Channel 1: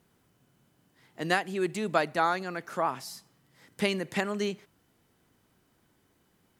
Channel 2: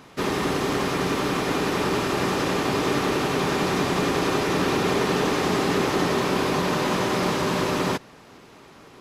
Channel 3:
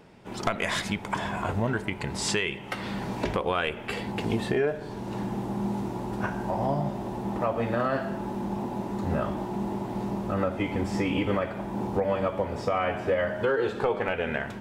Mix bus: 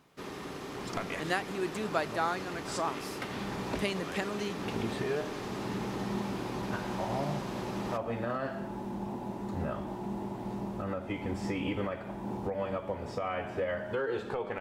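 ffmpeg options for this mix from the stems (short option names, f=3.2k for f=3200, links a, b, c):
-filter_complex "[0:a]volume=-5dB,asplit=2[a][b];[1:a]volume=-17dB[c];[2:a]alimiter=limit=-17.5dB:level=0:latency=1:release=226,adelay=500,volume=-6dB[d];[b]apad=whole_len=666254[e];[d][e]sidechaincompress=threshold=-45dB:ratio=8:attack=5.2:release=168[f];[a][c][f]amix=inputs=3:normalize=0"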